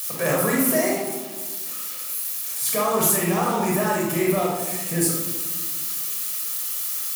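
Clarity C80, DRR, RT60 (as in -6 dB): 4.5 dB, -3.0 dB, 1.4 s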